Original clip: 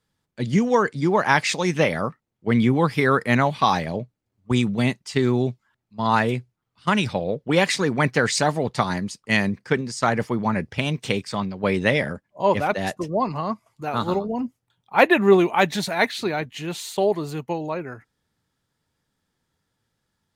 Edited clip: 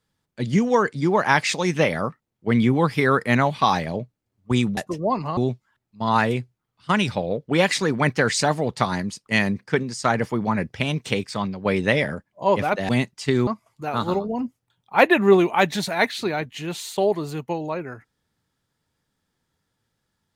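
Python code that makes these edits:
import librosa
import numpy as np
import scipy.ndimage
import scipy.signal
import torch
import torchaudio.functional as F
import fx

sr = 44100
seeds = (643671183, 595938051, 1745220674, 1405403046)

y = fx.edit(x, sr, fx.swap(start_s=4.77, length_s=0.58, other_s=12.87, other_length_s=0.6), tone=tone)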